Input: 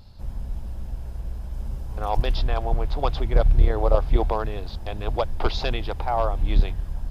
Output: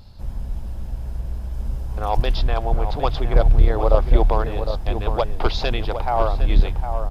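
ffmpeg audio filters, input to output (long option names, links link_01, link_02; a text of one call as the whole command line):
ffmpeg -i in.wav -filter_complex "[0:a]asplit=2[link_01][link_02];[link_02]adelay=758,volume=-8dB,highshelf=frequency=4000:gain=-17.1[link_03];[link_01][link_03]amix=inputs=2:normalize=0,volume=3dB" out.wav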